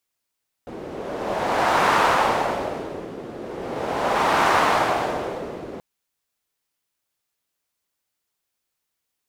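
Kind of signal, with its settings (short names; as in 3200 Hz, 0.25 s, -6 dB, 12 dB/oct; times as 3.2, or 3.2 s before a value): wind-like swept noise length 5.13 s, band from 380 Hz, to 1000 Hz, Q 1.6, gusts 2, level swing 17 dB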